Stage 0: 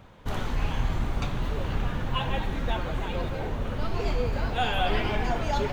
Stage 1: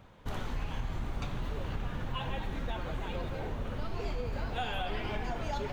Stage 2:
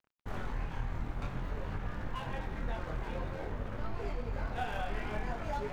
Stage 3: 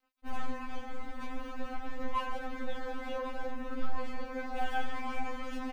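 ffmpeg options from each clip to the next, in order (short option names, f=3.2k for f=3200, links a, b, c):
-af "acompressor=threshold=-25dB:ratio=6,volume=-5dB"
-af "highshelf=f=2.5k:t=q:w=1.5:g=-6,flanger=delay=19:depth=6.6:speed=0.52,aeval=exprs='sgn(val(0))*max(abs(val(0))-0.00282,0)':c=same,volume=2dB"
-af "aecho=1:1:1107:0.237,afftfilt=real='re*3.46*eq(mod(b,12),0)':imag='im*3.46*eq(mod(b,12),0)':win_size=2048:overlap=0.75,volume=4.5dB"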